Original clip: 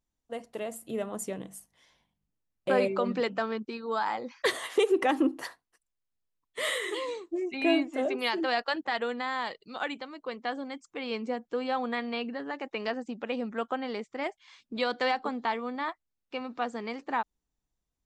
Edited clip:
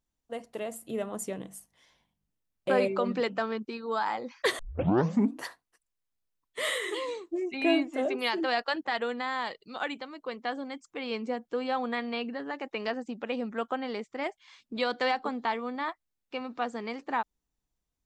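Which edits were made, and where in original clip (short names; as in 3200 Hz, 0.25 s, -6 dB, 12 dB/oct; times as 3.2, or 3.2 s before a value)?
4.59 tape start 0.82 s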